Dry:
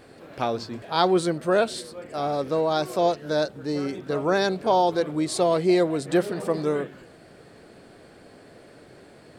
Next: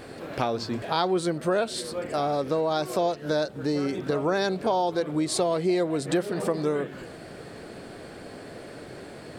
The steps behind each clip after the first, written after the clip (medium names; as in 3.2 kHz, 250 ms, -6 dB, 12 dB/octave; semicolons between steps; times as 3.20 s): compression 3:1, threshold -33 dBFS, peak gain reduction 13 dB; trim +7.5 dB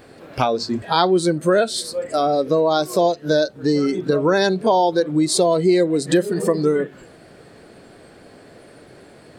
spectral noise reduction 12 dB; trim +8.5 dB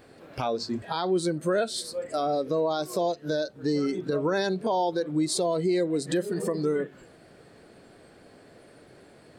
peak limiter -10 dBFS, peak gain reduction 7 dB; trim -7.5 dB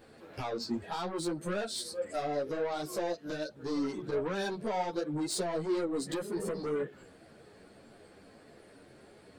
saturation -26 dBFS, distortion -12 dB; three-phase chorus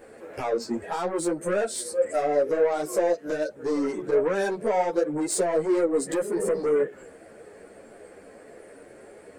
graphic EQ 125/500/2000/4000/8000 Hz -6/+9/+6/-10/+8 dB; trim +3.5 dB